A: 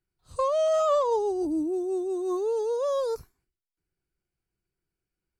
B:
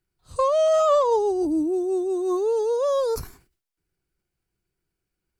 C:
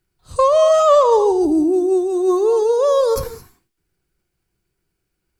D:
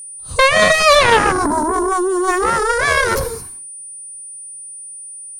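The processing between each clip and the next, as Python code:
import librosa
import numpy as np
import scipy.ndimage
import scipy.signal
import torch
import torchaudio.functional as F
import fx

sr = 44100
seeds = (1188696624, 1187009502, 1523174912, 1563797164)

y1 = fx.sustainer(x, sr, db_per_s=130.0)
y1 = F.gain(torch.from_numpy(y1), 4.5).numpy()
y2 = fx.rev_gated(y1, sr, seeds[0], gate_ms=240, shape='rising', drr_db=12.0)
y2 = F.gain(torch.from_numpy(y2), 7.0).numpy()
y3 = fx.cheby_harmonics(y2, sr, harmonics=(4, 7), levels_db=(-15, -6), full_scale_db=-3.0)
y3 = y3 + 10.0 ** (-29.0 / 20.0) * np.sin(2.0 * np.pi * 9300.0 * np.arange(len(y3)) / sr)
y3 = F.gain(torch.from_numpy(y3), -1.5).numpy()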